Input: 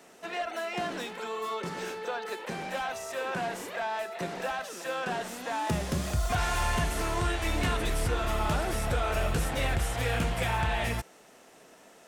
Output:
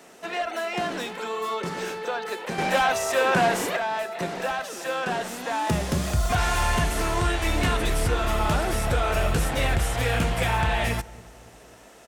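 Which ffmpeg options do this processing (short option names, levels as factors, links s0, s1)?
-filter_complex "[0:a]asettb=1/sr,asplit=3[s0][s1][s2];[s0]atrim=end=2.584[s3];[s1]atrim=start=2.58:end=3.77,asetpts=PTS-STARTPTS,afade=t=in:d=0.004:c=qsin,afade=t=out:st=1.186:d=0.004:c=qsin,acontrast=78[s4];[s2]atrim=start=3.766[s5];[s3][s4]acrossfade=d=0.004:c1=hsin:c2=qsin[s6];[s6][s5]acrossfade=d=0.004:c1=qsin:c2=hsin,asplit=2[s7][s8];[s8]adelay=276,lowpass=f=930:p=1,volume=0.112,asplit=2[s9][s10];[s10]adelay=276,lowpass=f=930:p=1,volume=0.48,asplit=2[s11][s12];[s12]adelay=276,lowpass=f=930:p=1,volume=0.48,asplit=2[s13][s14];[s14]adelay=276,lowpass=f=930:p=1,volume=0.48[s15];[s7][s9][s11][s13][s15]amix=inputs=5:normalize=0,volume=1.78"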